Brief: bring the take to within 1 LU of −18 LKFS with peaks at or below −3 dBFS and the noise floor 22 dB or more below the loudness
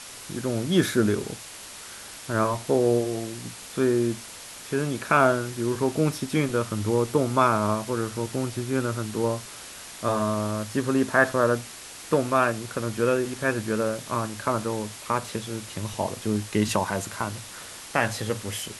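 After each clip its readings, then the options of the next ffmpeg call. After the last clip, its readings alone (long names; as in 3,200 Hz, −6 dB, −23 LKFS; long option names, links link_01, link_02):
background noise floor −42 dBFS; target noise floor −48 dBFS; integrated loudness −26.0 LKFS; sample peak −6.0 dBFS; target loudness −18.0 LKFS
→ -af "afftdn=noise_reduction=6:noise_floor=-42"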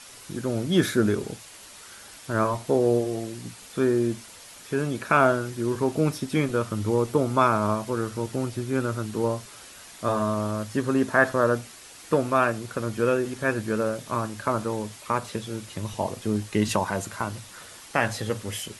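background noise floor −46 dBFS; target noise floor −48 dBFS
→ -af "afftdn=noise_reduction=6:noise_floor=-46"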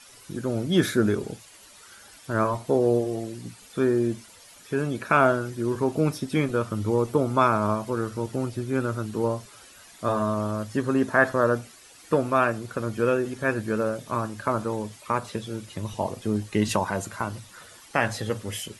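background noise floor −50 dBFS; integrated loudness −26.0 LKFS; sample peak −6.0 dBFS; target loudness −18.0 LKFS
→ -af "volume=8dB,alimiter=limit=-3dB:level=0:latency=1"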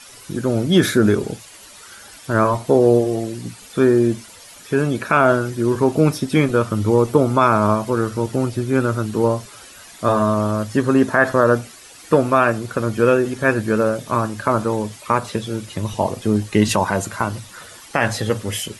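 integrated loudness −18.5 LKFS; sample peak −3.0 dBFS; background noise floor −42 dBFS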